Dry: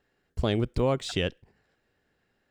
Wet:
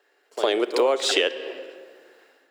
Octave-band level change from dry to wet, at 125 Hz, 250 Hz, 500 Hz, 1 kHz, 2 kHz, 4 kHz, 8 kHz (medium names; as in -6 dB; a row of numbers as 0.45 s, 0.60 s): under -30 dB, 0.0 dB, +7.5 dB, +7.5 dB, +9.5 dB, +10.5 dB, +12.0 dB